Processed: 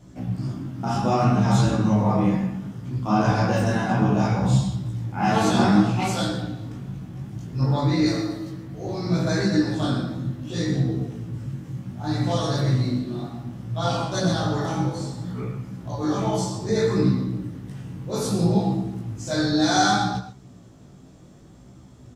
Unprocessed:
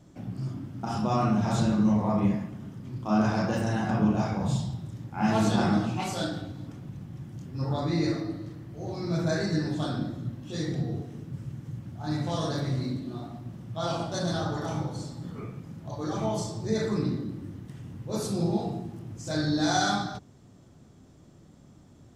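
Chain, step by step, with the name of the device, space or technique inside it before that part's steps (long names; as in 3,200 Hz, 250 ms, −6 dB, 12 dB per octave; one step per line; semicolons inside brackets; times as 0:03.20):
0:08.06–0:08.50: bass and treble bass −4 dB, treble +7 dB
double-tracked vocal (double-tracking delay 16 ms −5 dB; chorus effect 0.64 Hz, delay 15 ms, depth 7.3 ms)
reverb whose tail is shaped and stops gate 150 ms rising, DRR 9 dB
level +7.5 dB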